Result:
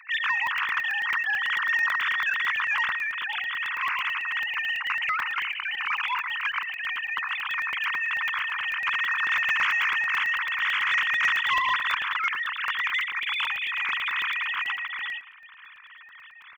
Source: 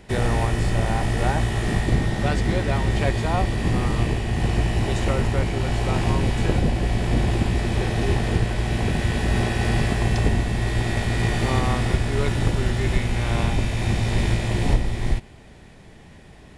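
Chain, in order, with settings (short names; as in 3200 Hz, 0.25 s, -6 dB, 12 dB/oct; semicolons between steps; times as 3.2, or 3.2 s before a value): sine-wave speech; steep high-pass 1000 Hz 72 dB/oct; tilt +2 dB/oct; 2.9–3.81 compressor 6:1, threshold -24 dBFS, peak gain reduction 7 dB; soft clip -11 dBFS, distortion -28 dB; 14.11–14.6 air absorption 80 m; feedback echo 0.114 s, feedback 32%, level -19.5 dB; crackling interface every 0.11 s, samples 64, zero, from 0.47; gain -2.5 dB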